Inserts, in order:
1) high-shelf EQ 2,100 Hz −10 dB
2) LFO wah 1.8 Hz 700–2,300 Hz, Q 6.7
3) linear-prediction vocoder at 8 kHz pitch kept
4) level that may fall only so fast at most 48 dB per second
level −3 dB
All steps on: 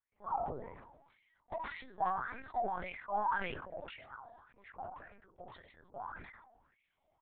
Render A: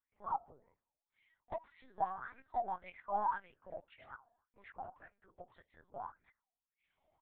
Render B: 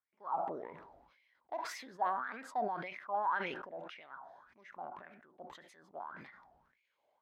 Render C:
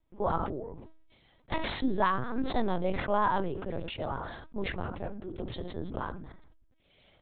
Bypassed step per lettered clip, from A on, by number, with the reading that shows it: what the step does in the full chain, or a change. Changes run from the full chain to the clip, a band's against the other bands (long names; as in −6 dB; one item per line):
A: 4, 1 kHz band +6.0 dB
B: 3, 125 Hz band −5.5 dB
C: 2, 1 kHz band −8.5 dB